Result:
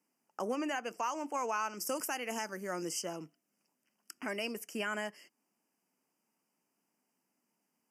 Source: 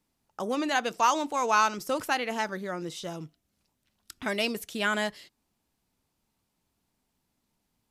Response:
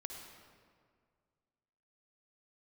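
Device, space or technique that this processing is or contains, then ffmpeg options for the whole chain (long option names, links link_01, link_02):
PA system with an anti-feedback notch: -filter_complex "[0:a]highpass=frequency=200:width=0.5412,highpass=frequency=200:width=1.3066,asuperstop=centerf=3800:order=12:qfactor=2.4,alimiter=limit=-22.5dB:level=0:latency=1:release=388,asettb=1/sr,asplit=3[link_01][link_02][link_03];[link_01]atrim=end=1.774[link_04];[link_02]atrim=start=1.77:end=3.02,asetpts=PTS-STARTPTS,afade=type=in:duration=0.004:curve=qsin,afade=type=out:start_time=1.246:duration=0.004:curve=qsin,bass=frequency=250:gain=2,treble=frequency=4000:gain=11[link_05];[link_03]atrim=start=3.016[link_06];[link_04][link_05]acrossfade=duration=0.004:curve1=hsin:curve2=qsin[link_07];[link_07][link_06]acrossfade=duration=0.004:curve1=qsin:curve2=hsin,volume=-2.5dB"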